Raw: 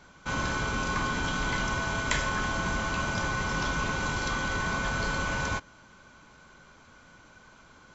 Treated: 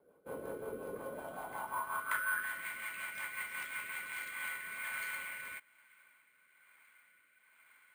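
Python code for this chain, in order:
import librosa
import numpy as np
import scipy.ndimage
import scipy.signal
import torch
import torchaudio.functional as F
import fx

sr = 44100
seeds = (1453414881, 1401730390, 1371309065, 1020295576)

y = fx.filter_sweep_bandpass(x, sr, from_hz=470.0, to_hz=2100.0, start_s=0.92, end_s=2.68, q=5.4)
y = fx.rotary_switch(y, sr, hz=5.5, then_hz=1.1, switch_at_s=3.87)
y = np.repeat(scipy.signal.resample_poly(y, 1, 4), 4)[:len(y)]
y = y * 10.0 ** (4.0 / 20.0)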